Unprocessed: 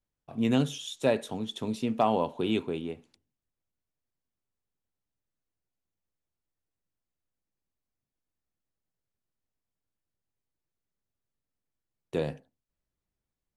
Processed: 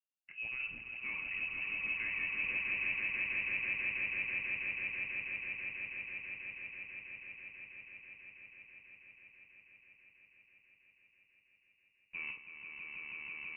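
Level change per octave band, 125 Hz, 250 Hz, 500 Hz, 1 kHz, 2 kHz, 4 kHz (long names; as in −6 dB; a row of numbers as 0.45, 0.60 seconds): −22.0, −26.5, −27.5, −21.0, +12.5, −10.0 decibels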